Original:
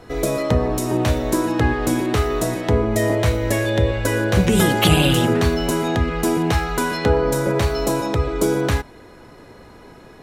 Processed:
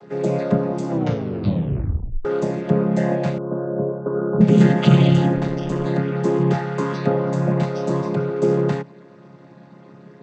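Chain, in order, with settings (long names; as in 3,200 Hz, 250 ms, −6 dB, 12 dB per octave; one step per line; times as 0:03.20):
channel vocoder with a chord as carrier major triad, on C#3
0:00.89: tape stop 1.36 s
0:03.38–0:04.41: Chebyshev low-pass with heavy ripple 1,500 Hz, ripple 6 dB
0:05.36–0:05.86: amplitude modulation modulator 160 Hz, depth 40%
level +1.5 dB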